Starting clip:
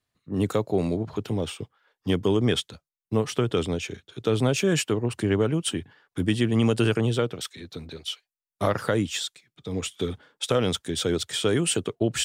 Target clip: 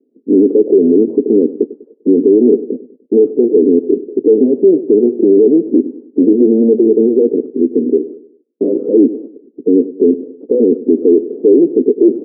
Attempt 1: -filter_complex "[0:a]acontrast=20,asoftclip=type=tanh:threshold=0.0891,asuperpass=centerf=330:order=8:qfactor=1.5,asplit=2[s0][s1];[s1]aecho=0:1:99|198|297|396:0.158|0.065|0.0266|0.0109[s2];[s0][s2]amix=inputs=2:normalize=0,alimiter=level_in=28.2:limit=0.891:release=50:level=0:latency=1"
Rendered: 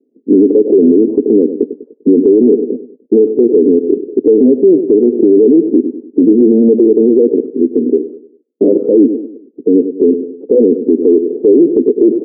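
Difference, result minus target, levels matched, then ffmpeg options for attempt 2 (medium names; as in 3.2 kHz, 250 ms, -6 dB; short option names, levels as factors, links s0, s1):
saturation: distortion -5 dB
-filter_complex "[0:a]acontrast=20,asoftclip=type=tanh:threshold=0.0299,asuperpass=centerf=330:order=8:qfactor=1.5,asplit=2[s0][s1];[s1]aecho=0:1:99|198|297|396:0.158|0.065|0.0266|0.0109[s2];[s0][s2]amix=inputs=2:normalize=0,alimiter=level_in=28.2:limit=0.891:release=50:level=0:latency=1"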